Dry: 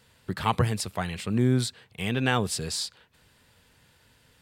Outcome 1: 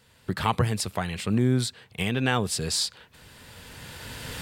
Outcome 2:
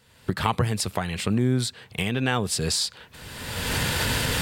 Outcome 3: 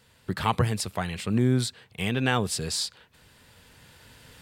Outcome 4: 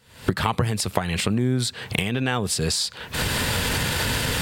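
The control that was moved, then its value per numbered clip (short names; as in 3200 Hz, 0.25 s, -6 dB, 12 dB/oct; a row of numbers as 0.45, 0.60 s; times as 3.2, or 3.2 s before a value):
recorder AGC, rising by: 13, 33, 5.2, 87 dB/s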